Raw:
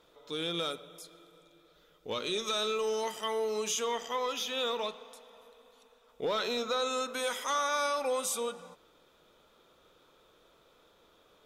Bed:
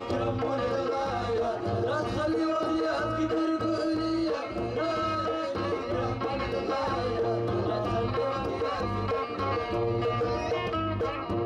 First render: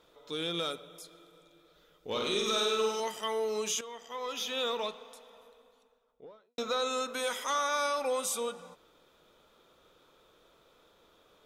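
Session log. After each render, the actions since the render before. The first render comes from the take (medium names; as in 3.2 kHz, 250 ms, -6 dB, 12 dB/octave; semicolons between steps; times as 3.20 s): 2.08–3.00 s: flutter echo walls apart 8.5 m, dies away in 0.95 s; 3.81–4.44 s: fade in quadratic, from -12.5 dB; 5.26–6.58 s: studio fade out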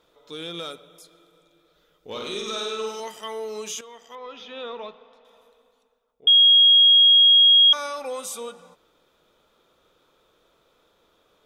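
2.41–2.87 s: low-pass 9.8 kHz; 4.15–5.25 s: distance through air 270 m; 6.27–7.73 s: bleep 3.28 kHz -10.5 dBFS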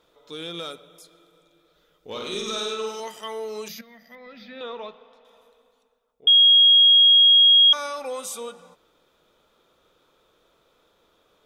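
2.32–2.74 s: tone controls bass +5 dB, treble +3 dB; 3.68–4.61 s: FFT filter 130 Hz 0 dB, 210 Hz +12 dB, 400 Hz -18 dB, 590 Hz +2 dB, 1 kHz -15 dB, 2 kHz +7 dB, 3.1 kHz -15 dB, 4.5 kHz +6 dB, 8.1 kHz -27 dB, 13 kHz +9 dB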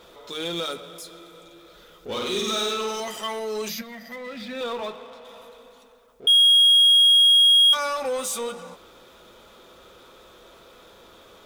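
comb of notches 150 Hz; power-law waveshaper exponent 0.7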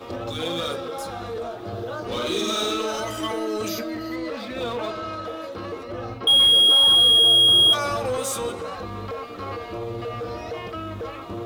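add bed -3 dB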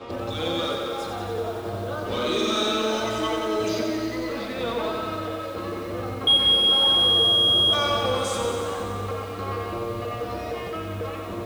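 distance through air 60 m; bit-crushed delay 91 ms, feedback 80%, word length 8-bit, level -5.5 dB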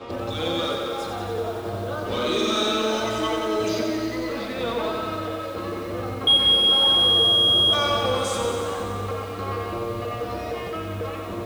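trim +1 dB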